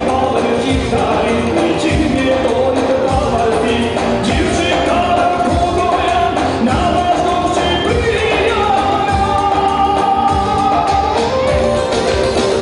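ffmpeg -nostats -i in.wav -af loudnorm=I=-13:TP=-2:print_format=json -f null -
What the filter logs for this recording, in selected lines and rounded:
"input_i" : "-13.9",
"input_tp" : "-2.8",
"input_lra" : "0.5",
"input_thresh" : "-23.9",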